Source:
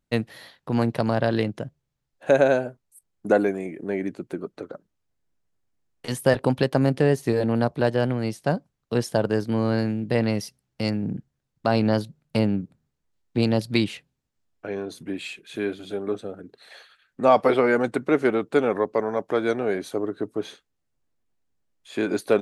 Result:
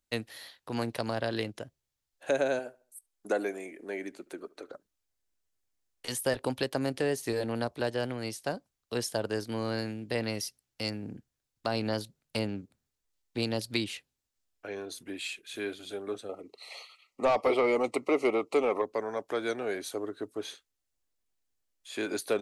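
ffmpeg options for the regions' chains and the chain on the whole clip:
-filter_complex "[0:a]asettb=1/sr,asplit=3[a][b][c];[a]atrim=end=2.594[d];[b]atrim=start=2.59:end=4.7,asetpts=PTS-STARTPTS,afade=t=in:d=0.004:c=qsin,afade=t=out:st=2.106:d=0.004:c=qsin,equalizer=f=100:t=o:w=1.3:g=-14.5,asplit=2[e][f];[f]adelay=73,lowpass=f=3.1k:p=1,volume=-23dB,asplit=2[g][h];[h]adelay=73,lowpass=f=3.1k:p=1,volume=0.42,asplit=2[i][j];[j]adelay=73,lowpass=f=3.1k:p=1,volume=0.42[k];[e][g][i][k]amix=inputs=4:normalize=0,atrim=end_sample=93051[l];[c]atrim=start=4.696[m];[d][l]acrossfade=d=0.004:c1=hsin:c2=qsin[n];[n][m]acrossfade=d=0.004:c1=qsin:c2=hsin,asettb=1/sr,asplit=3[o][p][q];[o]atrim=end=16.294[r];[p]atrim=start=16.29:end=18.82,asetpts=PTS-STARTPTS,afade=t=in:d=0.004:c=qsin,afade=t=out:st=2.526:d=0.004:c=qsin,asuperstop=centerf=1600:order=8:qfactor=2.4,equalizer=f=3.5k:w=7.1:g=-11.5,asplit=2[s][t];[t]highpass=f=720:p=1,volume=16dB,asoftclip=type=tanh:threshold=-3.5dB[u];[s][u]amix=inputs=2:normalize=0,lowpass=f=2.6k:p=1,volume=-6dB[v];[q]atrim=start=18.816[w];[r][v]acrossfade=d=0.004:c1=hsin:c2=qsin[x];[x][w]acrossfade=d=0.004:c1=qsin:c2=hsin,highshelf=f=2.6k:g=11,acrossover=split=470[y][z];[z]acompressor=threshold=-24dB:ratio=2[aa];[y][aa]amix=inputs=2:normalize=0,equalizer=f=160:t=o:w=0.87:g=-10.5,volume=-7.5dB"

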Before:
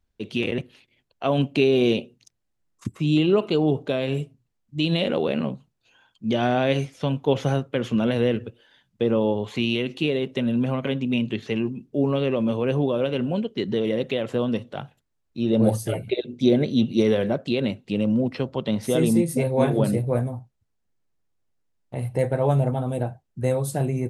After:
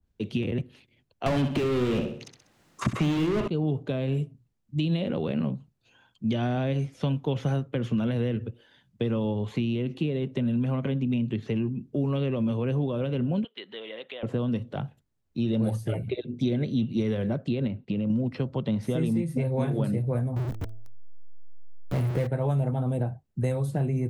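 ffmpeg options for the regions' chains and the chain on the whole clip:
-filter_complex "[0:a]asettb=1/sr,asplit=3[a][b][c];[a]atrim=end=1.264[d];[b]atrim=start=1.26:end=3.48,asetpts=PTS-STARTPTS,afade=t=in:d=0.004:c=qsin,afade=t=out:st=2.216:d=0.004:c=qsin,asplit=2[e][f];[f]highpass=f=720:p=1,volume=35dB,asoftclip=type=tanh:threshold=-6.5dB[g];[e][g]amix=inputs=2:normalize=0,lowpass=f=4.6k:p=1,volume=-6dB,aecho=1:1:64|128|192:0.335|0.1|0.0301,atrim=end_sample=97902[h];[c]atrim=start=3.476[i];[d][h]acrossfade=d=0.004:c1=hsin:c2=qsin[j];[j][i]acrossfade=d=0.004:c1=qsin:c2=hsin,asettb=1/sr,asplit=3[k][l][m];[k]atrim=end=13.444[n];[l]atrim=start=13.44:end=14.23,asetpts=PTS-STARTPTS,afade=t=in:d=0.004:c=qsin,afade=t=out:st=0.786:d=0.004:c=qsin,highpass=1.2k,highshelf=f=4.4k:t=q:w=3:g=-8[o];[m]atrim=start=14.226[p];[n][o]acrossfade=d=0.004:c1=hsin:c2=qsin[q];[q][p]acrossfade=d=0.004:c1=qsin:c2=hsin,asettb=1/sr,asplit=3[r][s][t];[r]atrim=end=17.674[u];[s]atrim=start=17.67:end=18.1,asetpts=PTS-STARTPTS,afade=t=in:d=0.004:c=qsin,afade=t=out:st=0.426:d=0.004:c=qsin,agate=range=-33dB:threshold=-54dB:ratio=3:release=100:detection=peak,lowpass=3.2k,acompressor=threshold=-25dB:ratio=4:attack=3.2:release=140:knee=1:detection=peak[v];[t]atrim=start=18.096[w];[u][v]acrossfade=d=0.004:c1=hsin:c2=qsin[x];[x][w]acrossfade=d=0.004:c1=qsin:c2=hsin,asettb=1/sr,asplit=3[y][z][aa];[y]atrim=end=20.364[ab];[z]atrim=start=20.36:end=22.27,asetpts=PTS-STARTPTS,afade=t=in:d=0.004:c=qsin,afade=t=out:st=1.906:d=0.004:c=qsin,aeval=exprs='val(0)+0.5*0.0562*sgn(val(0))':c=same,equalizer=f=9.6k:t=o:w=1.7:g=-5.5,bandreject=f=110.2:t=h:w=4,bandreject=f=220.4:t=h:w=4,bandreject=f=330.6:t=h:w=4,bandreject=f=440.8:t=h:w=4,bandreject=f=551:t=h:w=4,bandreject=f=661.2:t=h:w=4[ac];[aa]atrim=start=22.266[ad];[ab][ac]acrossfade=d=0.004:c1=hsin:c2=qsin[ae];[ae][ad]acrossfade=d=0.004:c1=qsin:c2=hsin,equalizer=f=110:w=0.35:g=9,acrossover=split=170|1200|3600[af][ag][ah][ai];[af]acompressor=threshold=-27dB:ratio=4[aj];[ag]acompressor=threshold=-27dB:ratio=4[ak];[ah]acompressor=threshold=-37dB:ratio=4[al];[ai]acompressor=threshold=-46dB:ratio=4[am];[aj][ak][al][am]amix=inputs=4:normalize=0,adynamicequalizer=threshold=0.00501:dfrequency=1800:dqfactor=0.7:tfrequency=1800:tqfactor=0.7:attack=5:release=100:ratio=0.375:range=3:mode=cutabove:tftype=highshelf,volume=-2.5dB"

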